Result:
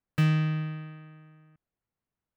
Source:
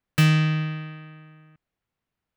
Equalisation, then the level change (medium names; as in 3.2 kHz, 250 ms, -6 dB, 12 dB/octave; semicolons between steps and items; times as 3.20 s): treble shelf 2.7 kHz -11.5 dB; -5.0 dB